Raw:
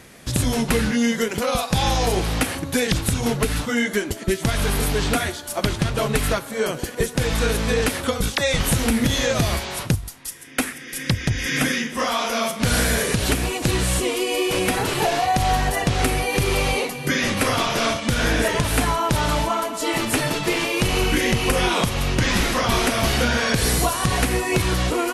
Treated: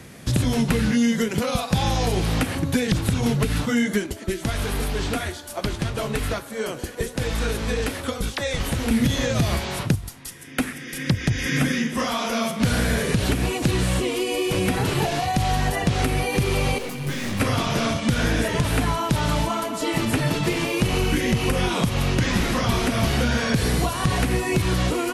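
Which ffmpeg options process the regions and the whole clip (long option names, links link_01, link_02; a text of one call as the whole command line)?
ffmpeg -i in.wav -filter_complex "[0:a]asettb=1/sr,asplit=3[link_01][link_02][link_03];[link_01]atrim=end=4.064[link_04];[link_02]atrim=start=4.06:end=8.91,asetpts=PTS-STARTPTS,afade=type=in:duration=0.004:curve=qsin,afade=type=out:start_time=4.846:duration=0.004:curve=qsin,equalizer=frequency=150:width_type=o:width=1.1:gain=-9,flanger=delay=5:depth=9.6:regen=-65:speed=1.2:shape=sinusoidal[link_05];[link_03]atrim=start=8.906[link_06];[link_04][link_05]acrossfade=duration=0.004:curve1=hsin:curve2=qsin[link_07];[link_07][link_06]acrossfade=duration=0.004:curve1=qsin:curve2=hsin,asettb=1/sr,asplit=3[link_08][link_09][link_10];[link_08]atrim=end=16.784[link_11];[link_09]atrim=start=16.78:end=17.4,asetpts=PTS-STARTPTS,afade=type=in:duration=0.004:curve=qsin,afade=type=out:start_time=0.616:duration=0.004:curve=qsin,aeval=exprs='(tanh(31.6*val(0)+0.65)-tanh(0.65))/31.6':channel_layout=same,asplit=2[link_12][link_13];[link_13]adelay=21,volume=-6dB[link_14];[link_12][link_14]amix=inputs=2:normalize=0,atrim=end_sample=27342[link_15];[link_10]atrim=start=17.396[link_16];[link_11][link_15]acrossfade=duration=0.004:curve1=hsin:curve2=qsin[link_17];[link_17][link_16]acrossfade=duration=0.004:curve1=qsin:curve2=hsin,equalizer=frequency=130:width=0.57:gain=7.5,acrossover=split=230|2100|4600[link_18][link_19][link_20][link_21];[link_18]acompressor=threshold=-21dB:ratio=4[link_22];[link_19]acompressor=threshold=-24dB:ratio=4[link_23];[link_20]acompressor=threshold=-33dB:ratio=4[link_24];[link_21]acompressor=threshold=-36dB:ratio=4[link_25];[link_22][link_23][link_24][link_25]amix=inputs=4:normalize=0" out.wav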